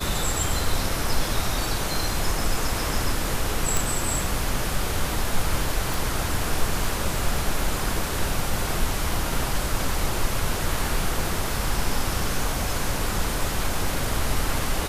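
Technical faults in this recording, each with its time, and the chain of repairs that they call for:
0:03.77: click
0:05.94: click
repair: click removal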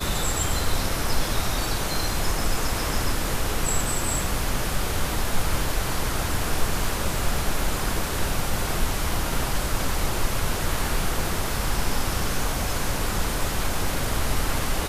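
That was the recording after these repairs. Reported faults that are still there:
none of them is left

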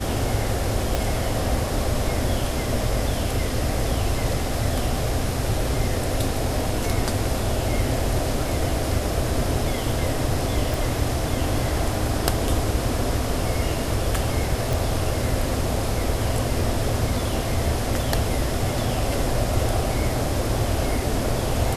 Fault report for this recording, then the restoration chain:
0:00.95: click
0:10.74: click
0:14.73: click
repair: click removal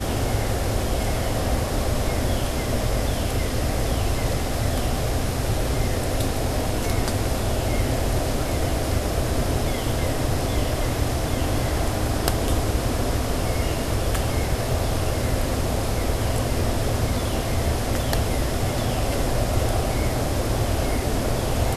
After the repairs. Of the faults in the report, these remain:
0:00.95: click

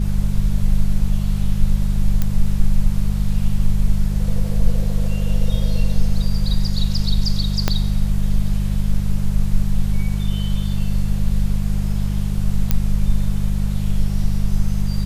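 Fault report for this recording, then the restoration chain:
mains hum 50 Hz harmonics 4 −21 dBFS
0:02.22: click −7 dBFS
0:07.68: click −3 dBFS
0:12.71: click −3 dBFS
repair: click removal
hum removal 50 Hz, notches 4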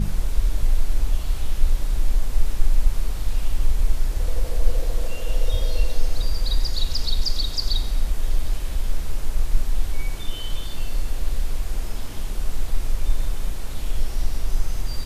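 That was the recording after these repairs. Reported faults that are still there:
0:07.68: click

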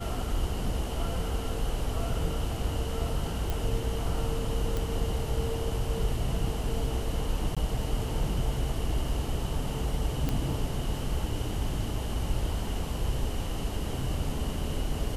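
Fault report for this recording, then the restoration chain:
0:03.50: click
0:04.77: click
0:07.55–0:07.57: drop-out 16 ms
0:10.29: click −15 dBFS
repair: click removal
repair the gap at 0:07.55, 16 ms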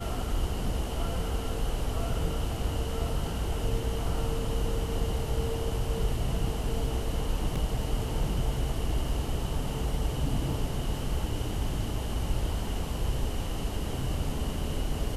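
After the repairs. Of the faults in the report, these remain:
none of them is left

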